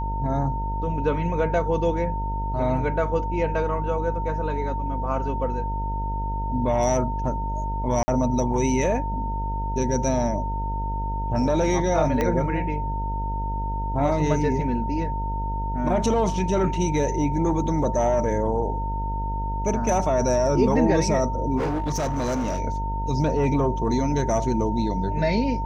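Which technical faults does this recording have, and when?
mains buzz 50 Hz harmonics 20 −28 dBFS
whistle 910 Hz −29 dBFS
0:08.03–0:08.08: drop-out 50 ms
0:12.21: click −11 dBFS
0:21.57–0:22.60: clipping −21.5 dBFS

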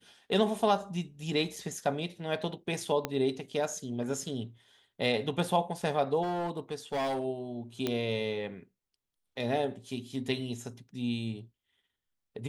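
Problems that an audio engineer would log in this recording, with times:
0:01.56: drop-out 3.6 ms
0:03.05: click −15 dBFS
0:06.22–0:07.24: clipping −28 dBFS
0:07.87: click −16 dBFS

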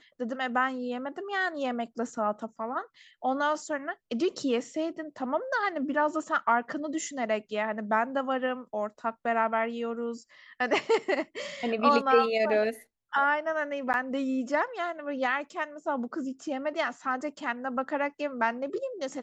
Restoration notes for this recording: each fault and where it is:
0:13.93–0:13.94: drop-out 9.2 ms

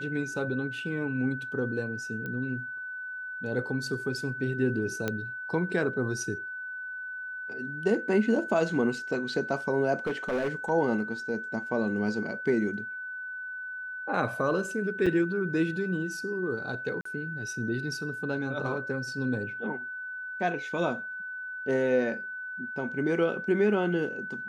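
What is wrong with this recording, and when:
whistle 1,500 Hz −35 dBFS
0:02.26: click −24 dBFS
0:05.08: click −15 dBFS
0:10.06–0:10.70: clipping −25 dBFS
0:15.06–0:15.07: drop-out 5.6 ms
0:17.01–0:17.05: drop-out 44 ms

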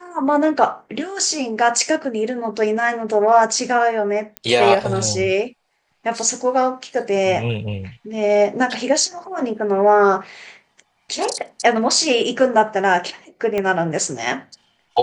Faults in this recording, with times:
0:04.37: click −12 dBFS
0:13.58: click −10 dBFS

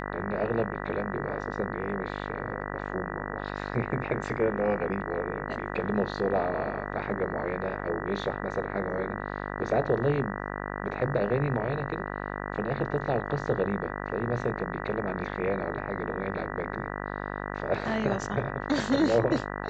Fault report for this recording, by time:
mains buzz 50 Hz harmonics 39 −35 dBFS

